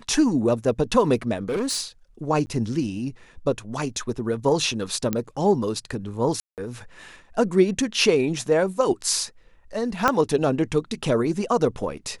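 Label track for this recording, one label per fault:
1.490000	1.810000	clipping −21.5 dBFS
2.460000	2.470000	drop-out 10 ms
5.130000	5.130000	click −10 dBFS
6.400000	6.580000	drop-out 178 ms
10.080000	10.080000	click −5 dBFS

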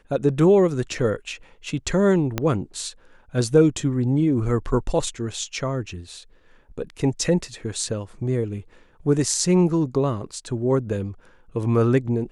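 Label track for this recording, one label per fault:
2.380000	2.380000	click −8 dBFS

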